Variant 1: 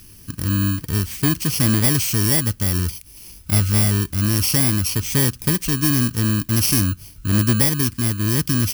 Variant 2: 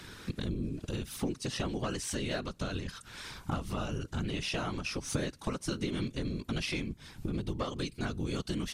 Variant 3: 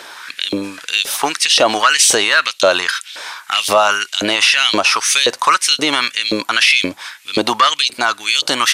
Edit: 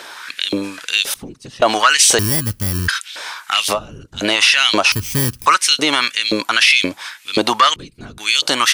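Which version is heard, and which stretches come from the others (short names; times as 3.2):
3
1.14–1.62 from 2
2.19–2.88 from 1
3.75–4.2 from 2, crossfade 0.10 s
4.92–5.46 from 1
7.76–8.18 from 2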